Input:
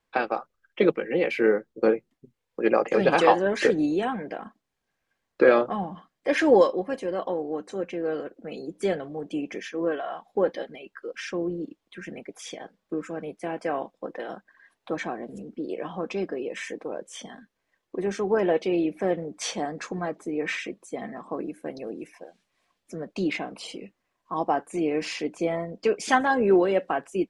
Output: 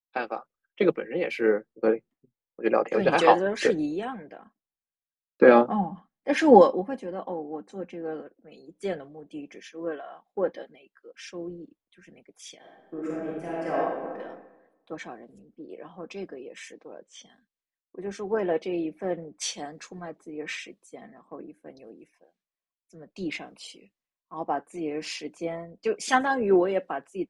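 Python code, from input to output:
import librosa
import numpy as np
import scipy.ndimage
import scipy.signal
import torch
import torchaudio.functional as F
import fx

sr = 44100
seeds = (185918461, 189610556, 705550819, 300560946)

y = fx.small_body(x, sr, hz=(220.0, 820.0), ring_ms=35, db=9, at=(5.42, 8.22))
y = fx.reverb_throw(y, sr, start_s=12.58, length_s=1.6, rt60_s=1.8, drr_db=-5.0)
y = fx.lowpass(y, sr, hz=7000.0, slope=24, at=(16.72, 17.3))
y = fx.band_widen(y, sr, depth_pct=70)
y = y * 10.0 ** (-5.0 / 20.0)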